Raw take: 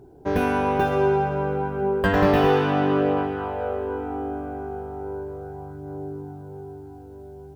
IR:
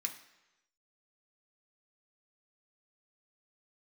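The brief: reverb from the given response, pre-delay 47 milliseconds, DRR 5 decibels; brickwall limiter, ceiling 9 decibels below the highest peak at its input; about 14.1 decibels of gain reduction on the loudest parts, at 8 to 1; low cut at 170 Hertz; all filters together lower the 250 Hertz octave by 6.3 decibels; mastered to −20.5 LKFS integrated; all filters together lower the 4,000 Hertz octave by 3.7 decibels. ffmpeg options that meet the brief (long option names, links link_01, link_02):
-filter_complex "[0:a]highpass=170,equalizer=frequency=250:width_type=o:gain=-7.5,equalizer=frequency=4000:width_type=o:gain=-5.5,acompressor=threshold=-32dB:ratio=8,alimiter=level_in=4dB:limit=-24dB:level=0:latency=1,volume=-4dB,asplit=2[link_01][link_02];[1:a]atrim=start_sample=2205,adelay=47[link_03];[link_02][link_03]afir=irnorm=-1:irlink=0,volume=-5dB[link_04];[link_01][link_04]amix=inputs=2:normalize=0,volume=17dB"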